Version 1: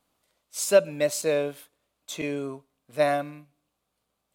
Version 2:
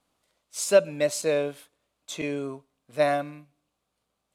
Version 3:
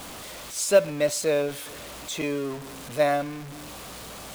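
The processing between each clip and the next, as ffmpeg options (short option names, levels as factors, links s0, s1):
-af "lowpass=11000"
-af "aeval=exprs='val(0)+0.5*0.0211*sgn(val(0))':c=same,acrusher=bits=7:mode=log:mix=0:aa=0.000001"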